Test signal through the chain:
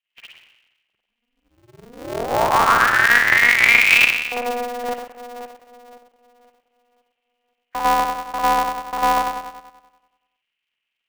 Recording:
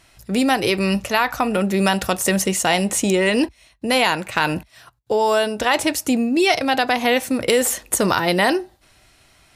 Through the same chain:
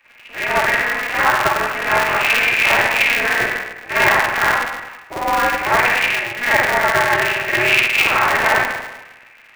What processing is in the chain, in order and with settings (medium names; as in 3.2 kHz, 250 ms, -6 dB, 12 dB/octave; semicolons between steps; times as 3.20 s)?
knee-point frequency compression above 1.6 kHz 4:1; high-pass 660 Hz 24 dB/octave; dynamic bell 1.2 kHz, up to +4 dB, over -34 dBFS, Q 1.8; in parallel at -3 dB: saturation -18 dBFS; on the sum: spring tank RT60 1.1 s, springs 47/51 ms, chirp 70 ms, DRR -9 dB; polarity switched at an audio rate 120 Hz; trim -9 dB